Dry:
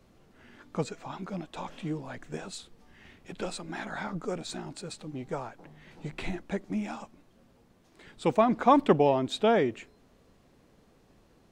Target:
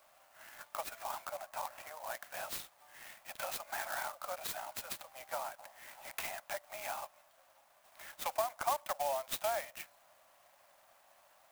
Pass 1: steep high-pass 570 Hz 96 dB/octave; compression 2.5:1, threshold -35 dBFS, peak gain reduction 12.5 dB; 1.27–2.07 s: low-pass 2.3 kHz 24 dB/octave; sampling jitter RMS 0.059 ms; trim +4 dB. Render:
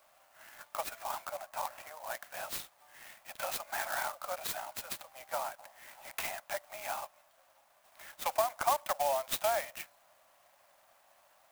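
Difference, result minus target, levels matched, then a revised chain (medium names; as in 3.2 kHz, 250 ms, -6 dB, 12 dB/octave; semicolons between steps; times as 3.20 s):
compression: peak gain reduction -4 dB
steep high-pass 570 Hz 96 dB/octave; compression 2.5:1, threshold -42 dBFS, peak gain reduction 16.5 dB; 1.27–2.07 s: low-pass 2.3 kHz 24 dB/octave; sampling jitter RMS 0.059 ms; trim +4 dB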